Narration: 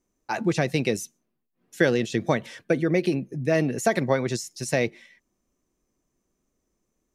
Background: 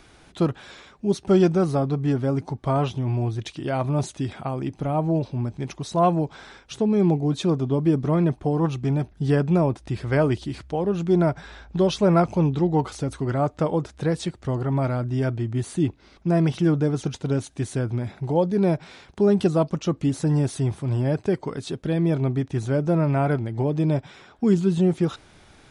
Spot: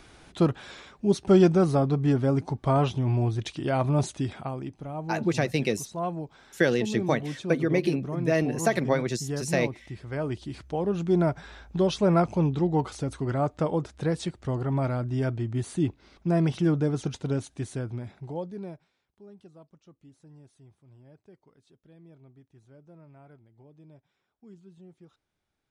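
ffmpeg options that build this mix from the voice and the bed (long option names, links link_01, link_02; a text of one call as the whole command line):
ffmpeg -i stem1.wav -i stem2.wav -filter_complex "[0:a]adelay=4800,volume=-2dB[link_01];[1:a]volume=7.5dB,afade=type=out:start_time=4.09:duration=0.71:silence=0.281838,afade=type=in:start_time=10.16:duration=0.62:silence=0.398107,afade=type=out:start_time=17.17:duration=1.74:silence=0.0421697[link_02];[link_01][link_02]amix=inputs=2:normalize=0" out.wav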